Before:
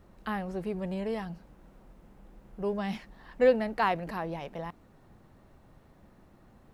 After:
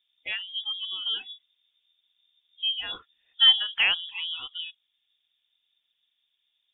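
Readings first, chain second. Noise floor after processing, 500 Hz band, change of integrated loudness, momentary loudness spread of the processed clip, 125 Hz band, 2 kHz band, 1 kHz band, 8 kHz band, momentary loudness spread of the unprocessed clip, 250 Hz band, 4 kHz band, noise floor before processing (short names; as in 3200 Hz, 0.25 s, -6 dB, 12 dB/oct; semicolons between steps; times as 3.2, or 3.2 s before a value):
-77 dBFS, under -25 dB, +7.0 dB, 19 LU, under -20 dB, +8.0 dB, -11.0 dB, n/a, 17 LU, under -25 dB, +27.5 dB, -59 dBFS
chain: spectral noise reduction 23 dB; inverted band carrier 3600 Hz; gain +4 dB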